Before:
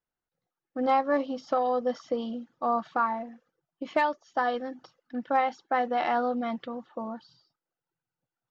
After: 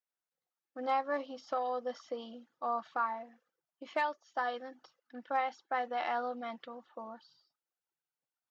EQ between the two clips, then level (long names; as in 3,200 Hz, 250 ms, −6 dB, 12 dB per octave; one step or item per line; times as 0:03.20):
high-pass filter 670 Hz 6 dB per octave
−5.0 dB